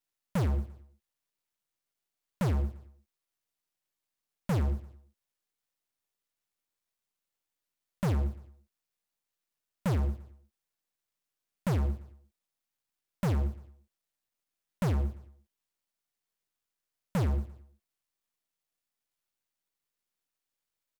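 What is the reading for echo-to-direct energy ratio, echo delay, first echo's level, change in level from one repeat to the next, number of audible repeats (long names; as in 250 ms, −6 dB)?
−18.0 dB, 115 ms, −19.0 dB, −7.0 dB, 3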